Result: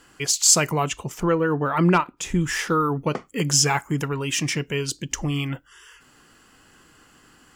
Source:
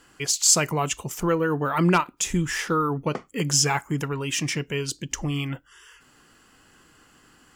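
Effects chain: 0.83–2.40 s: treble shelf 6.8 kHz -> 3.5 kHz -10.5 dB; trim +2 dB

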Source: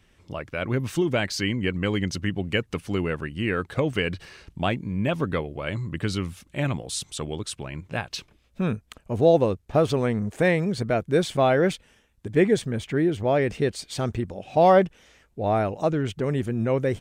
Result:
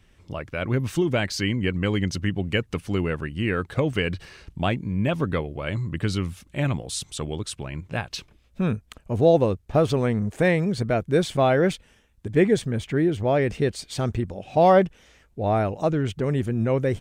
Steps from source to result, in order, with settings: bass shelf 120 Hz +5.5 dB

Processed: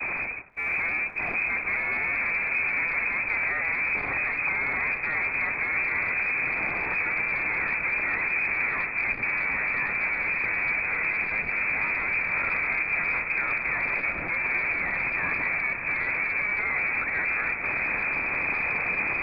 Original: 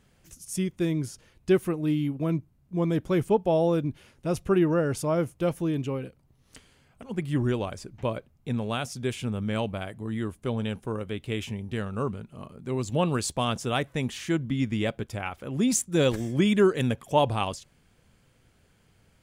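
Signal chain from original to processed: one-bit comparator; frequency inversion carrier 2.5 kHz; on a send: echo that smears into a reverb 678 ms, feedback 60%, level -5 dB; on the sum: expander -28 dBFS; transformer saturation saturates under 300 Hz

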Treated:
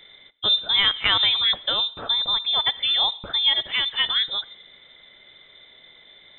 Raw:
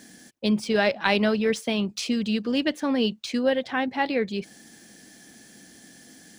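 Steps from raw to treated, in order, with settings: band-stop 1.2 kHz, Q 29; on a send at -19.5 dB: reverberation RT60 0.80 s, pre-delay 25 ms; on the sum: frequency inversion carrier 3.8 kHz; trim +2 dB

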